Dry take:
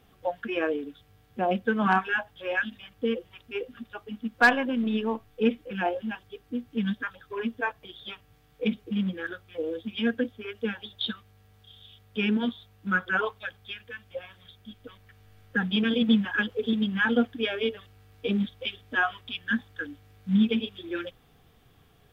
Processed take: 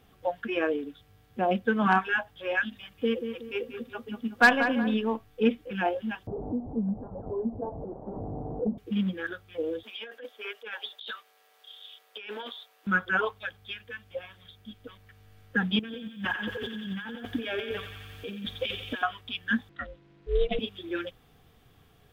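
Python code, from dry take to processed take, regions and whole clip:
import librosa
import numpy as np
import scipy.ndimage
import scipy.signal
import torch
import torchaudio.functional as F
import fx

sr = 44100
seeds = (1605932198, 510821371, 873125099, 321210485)

y = fx.chain(x, sr, fx.high_shelf(hz=4400.0, db=3.5),
    fx.echo_filtered(ms=186, feedback_pct=41, hz=2000.0, wet_db=-7.5), at=(2.76, 4.94))
y = fx.chain(y, sr, fx.delta_mod(bps=16000, step_db=-33.0),
    fx.steep_lowpass(hz=770.0, slope=36),
    fx.band_squash(depth_pct=70), at=(6.27, 8.78))
y = fx.chain(y, sr, fx.highpass(hz=490.0, slope=24),
    fx.over_compress(threshold_db=-39.0, ratio=-1.0), at=(9.83, 12.87))
y = fx.chain(y, sr, fx.over_compress(threshold_db=-36.0, ratio=-1.0),
    fx.quant_dither(seeds[0], bits=12, dither='none'),
    fx.echo_thinned(ms=89, feedback_pct=82, hz=880.0, wet_db=-7.5), at=(15.79, 19.03))
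y = fx.chain(y, sr, fx.lowpass(hz=4100.0, slope=12),
    fx.ring_mod(carrier_hz=240.0), at=(19.69, 20.59))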